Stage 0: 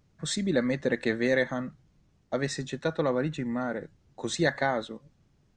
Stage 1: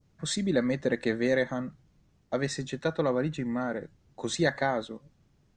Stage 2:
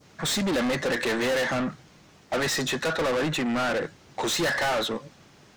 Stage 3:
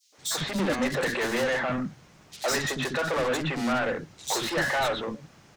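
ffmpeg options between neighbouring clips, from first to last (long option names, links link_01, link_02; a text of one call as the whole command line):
ffmpeg -i in.wav -af "adynamicequalizer=threshold=0.00891:dfrequency=2200:dqfactor=0.72:tfrequency=2200:tqfactor=0.72:attack=5:release=100:ratio=0.375:range=2:mode=cutabove:tftype=bell" out.wav
ffmpeg -i in.wav -filter_complex "[0:a]asplit=2[link_01][link_02];[link_02]highpass=frequency=720:poles=1,volume=35dB,asoftclip=type=tanh:threshold=-12.5dB[link_03];[link_01][link_03]amix=inputs=2:normalize=0,lowpass=frequency=7200:poles=1,volume=-6dB,volume=-6dB" out.wav
ffmpeg -i in.wav -filter_complex "[0:a]acrossover=split=330|3600[link_01][link_02][link_03];[link_02]adelay=120[link_04];[link_01]adelay=180[link_05];[link_05][link_04][link_03]amix=inputs=3:normalize=0" out.wav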